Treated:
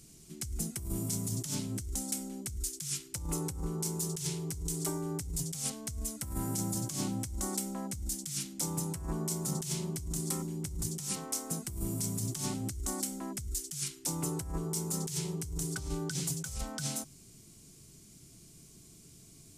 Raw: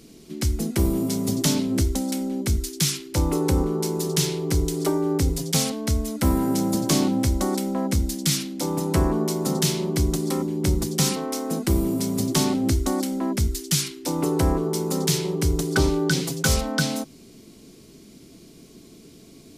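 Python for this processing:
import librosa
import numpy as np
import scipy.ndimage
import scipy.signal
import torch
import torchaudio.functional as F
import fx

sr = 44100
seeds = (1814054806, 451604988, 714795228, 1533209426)

y = fx.graphic_eq(x, sr, hz=(125, 250, 500, 1000, 2000, 4000, 8000), db=(5, -10, -10, -4, -4, -6, 8))
y = fx.over_compress(y, sr, threshold_db=-27.0, ratio=-1.0)
y = y * librosa.db_to_amplitude(-8.0)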